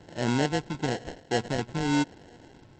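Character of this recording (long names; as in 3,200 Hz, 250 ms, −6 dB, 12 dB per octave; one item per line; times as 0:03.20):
phaser sweep stages 6, 1 Hz, lowest notch 500–1,400 Hz
aliases and images of a low sample rate 1,200 Hz, jitter 0%
SBC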